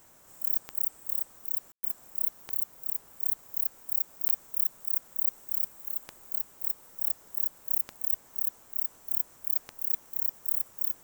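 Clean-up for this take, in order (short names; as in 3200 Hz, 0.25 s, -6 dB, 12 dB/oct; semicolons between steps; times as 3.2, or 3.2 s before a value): de-click; room tone fill 1.72–1.83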